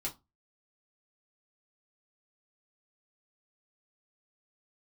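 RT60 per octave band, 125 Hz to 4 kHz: 0.35, 0.30, 0.20, 0.25, 0.15, 0.15 s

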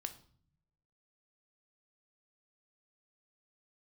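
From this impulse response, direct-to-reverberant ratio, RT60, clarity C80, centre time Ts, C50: 7.0 dB, 0.55 s, 17.5 dB, 7 ms, 13.5 dB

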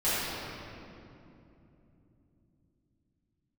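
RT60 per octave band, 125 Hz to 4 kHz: 5.4, 4.9, 3.4, 2.5, 2.1, 1.7 s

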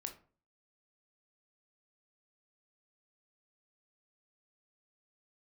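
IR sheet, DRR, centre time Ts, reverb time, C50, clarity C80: 5.0 dB, 11 ms, 0.45 s, 11.5 dB, 17.5 dB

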